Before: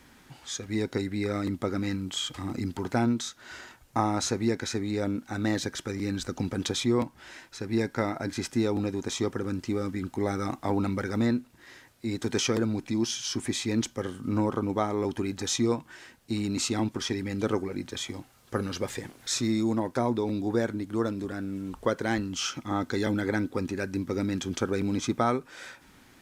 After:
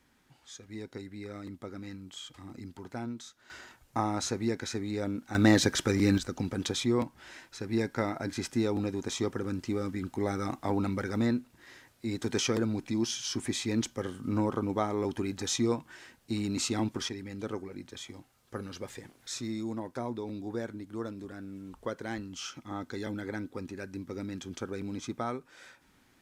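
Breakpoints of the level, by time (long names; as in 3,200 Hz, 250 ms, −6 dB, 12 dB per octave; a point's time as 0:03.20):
−12.5 dB
from 0:03.50 −4 dB
from 0:05.35 +6 dB
from 0:06.18 −2.5 dB
from 0:17.09 −9 dB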